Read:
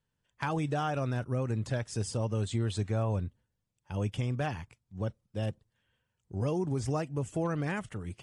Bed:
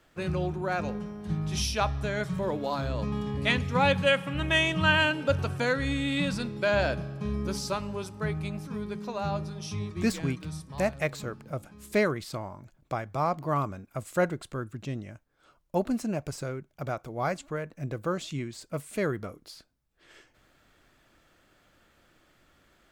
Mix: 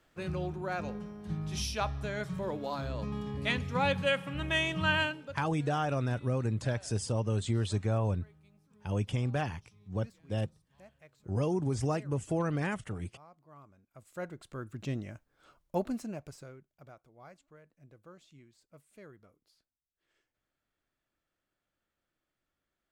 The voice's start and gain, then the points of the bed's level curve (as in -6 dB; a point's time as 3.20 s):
4.95 s, +0.5 dB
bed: 5.02 s -5.5 dB
5.52 s -29 dB
13.47 s -29 dB
14.89 s -0.5 dB
15.52 s -0.5 dB
17.11 s -23.5 dB